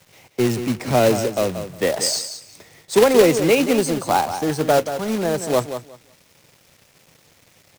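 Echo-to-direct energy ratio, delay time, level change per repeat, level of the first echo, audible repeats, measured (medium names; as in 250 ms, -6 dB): -10.0 dB, 180 ms, -15.0 dB, -10.0 dB, 2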